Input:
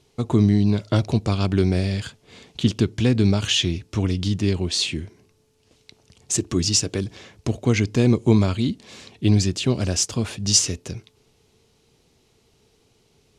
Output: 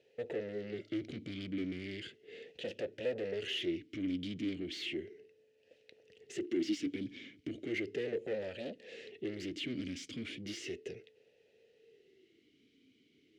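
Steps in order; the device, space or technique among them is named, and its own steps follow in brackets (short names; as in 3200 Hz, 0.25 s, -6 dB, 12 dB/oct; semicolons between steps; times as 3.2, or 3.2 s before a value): 6.43–6.86 resonant low shelf 170 Hz -9 dB, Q 1.5; talk box (tube stage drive 29 dB, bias 0.25; vowel sweep e-i 0.35 Hz); gain +6.5 dB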